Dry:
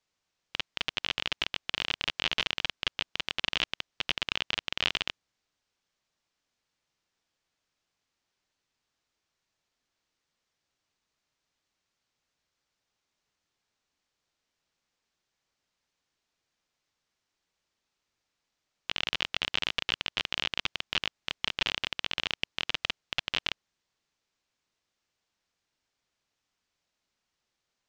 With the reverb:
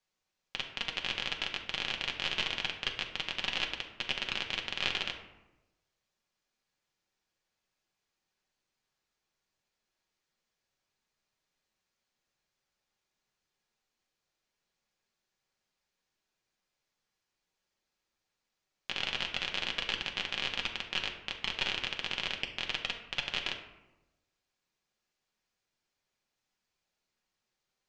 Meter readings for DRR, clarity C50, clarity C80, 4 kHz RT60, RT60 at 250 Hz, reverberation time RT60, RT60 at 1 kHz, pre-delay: 1.0 dB, 8.0 dB, 10.5 dB, 0.55 s, 1.2 s, 1.0 s, 1.0 s, 5 ms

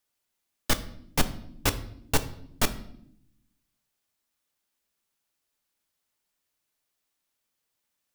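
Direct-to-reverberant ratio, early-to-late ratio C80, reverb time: 9.0 dB, 17.5 dB, 0.70 s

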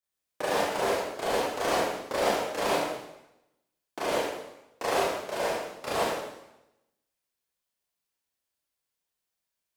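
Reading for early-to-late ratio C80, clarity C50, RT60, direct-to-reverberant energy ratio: 2.0 dB, −2.0 dB, 0.90 s, −8.5 dB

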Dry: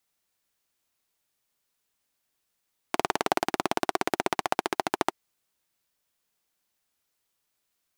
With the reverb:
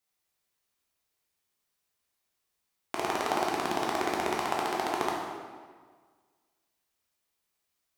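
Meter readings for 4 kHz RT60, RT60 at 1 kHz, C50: 1.2 s, 1.6 s, 1.0 dB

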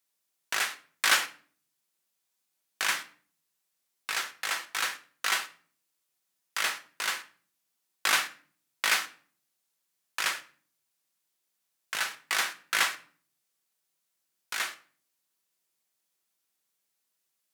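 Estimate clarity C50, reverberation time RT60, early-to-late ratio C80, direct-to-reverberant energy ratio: 15.5 dB, 0.45 s, 20.0 dB, 7.0 dB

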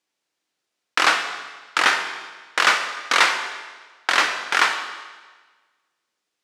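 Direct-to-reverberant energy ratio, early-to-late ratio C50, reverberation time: 6.0 dB, 7.5 dB, 1.4 s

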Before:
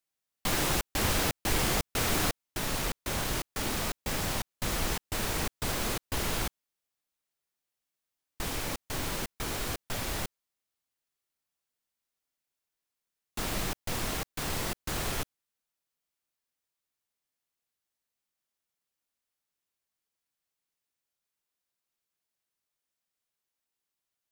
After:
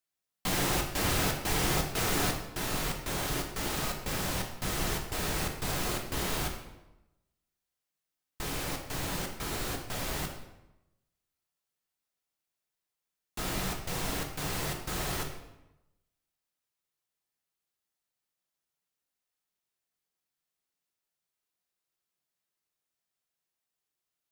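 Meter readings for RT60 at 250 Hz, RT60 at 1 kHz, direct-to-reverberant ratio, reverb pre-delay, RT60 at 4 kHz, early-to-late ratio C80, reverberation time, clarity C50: 1.1 s, 0.95 s, 2.0 dB, 3 ms, 0.70 s, 8.5 dB, 0.95 s, 6.5 dB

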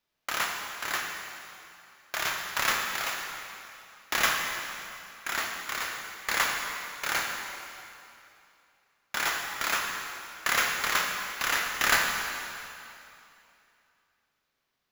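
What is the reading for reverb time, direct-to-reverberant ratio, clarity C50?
2.8 s, 1.0 dB, 2.5 dB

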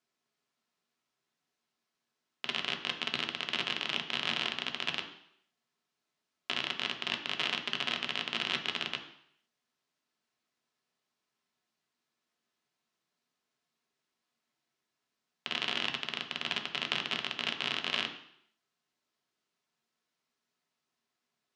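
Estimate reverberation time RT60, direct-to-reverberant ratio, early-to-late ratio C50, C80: 0.70 s, 2.0 dB, 9.0 dB, 12.0 dB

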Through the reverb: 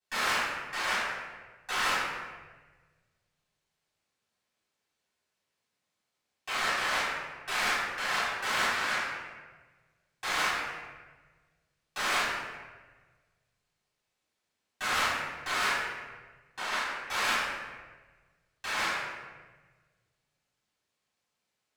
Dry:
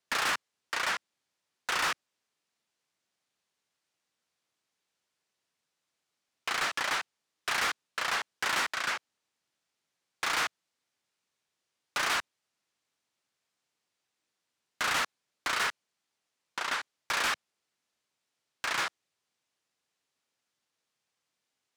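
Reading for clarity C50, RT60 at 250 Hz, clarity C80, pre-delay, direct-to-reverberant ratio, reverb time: −2.0 dB, 1.6 s, 1.0 dB, 3 ms, −13.5 dB, 1.3 s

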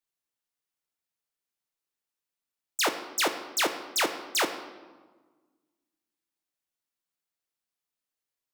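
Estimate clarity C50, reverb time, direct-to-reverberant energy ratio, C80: 10.0 dB, 1.4 s, 6.5 dB, 11.5 dB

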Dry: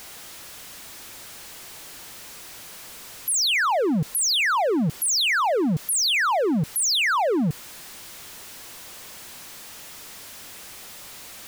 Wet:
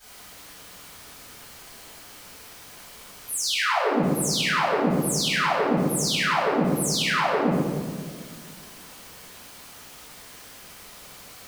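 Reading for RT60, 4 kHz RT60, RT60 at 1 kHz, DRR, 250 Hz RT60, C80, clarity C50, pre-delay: 1.9 s, 0.95 s, 1.6 s, −18.0 dB, 2.3 s, 0.0 dB, −2.0 dB, 3 ms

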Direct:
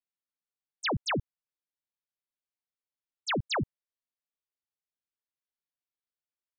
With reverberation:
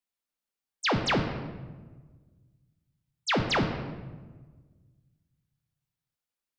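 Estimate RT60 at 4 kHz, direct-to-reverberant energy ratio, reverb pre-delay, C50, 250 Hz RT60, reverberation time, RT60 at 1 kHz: 0.85 s, 4.0 dB, 4 ms, 7.0 dB, 1.8 s, 1.4 s, 1.2 s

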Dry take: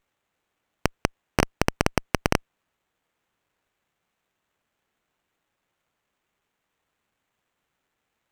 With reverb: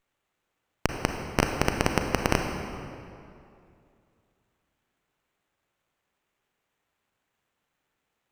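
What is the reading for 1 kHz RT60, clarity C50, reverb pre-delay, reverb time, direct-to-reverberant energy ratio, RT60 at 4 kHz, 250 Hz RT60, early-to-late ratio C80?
2.5 s, 4.0 dB, 32 ms, 2.5 s, 3.5 dB, 1.8 s, 2.6 s, 5.5 dB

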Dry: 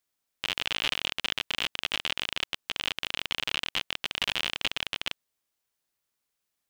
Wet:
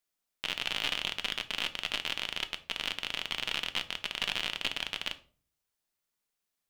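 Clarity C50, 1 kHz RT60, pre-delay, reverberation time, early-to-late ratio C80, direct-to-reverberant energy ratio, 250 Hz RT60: 17.0 dB, 0.35 s, 3 ms, 0.40 s, 21.0 dB, 9.0 dB, 0.65 s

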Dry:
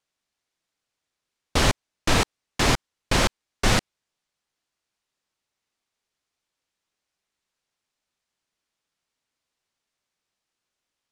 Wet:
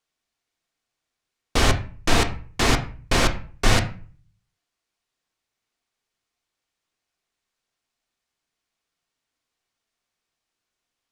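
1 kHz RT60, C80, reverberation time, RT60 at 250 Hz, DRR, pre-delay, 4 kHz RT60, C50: 0.40 s, 17.0 dB, 0.40 s, 0.50 s, 5.0 dB, 3 ms, 0.30 s, 12.5 dB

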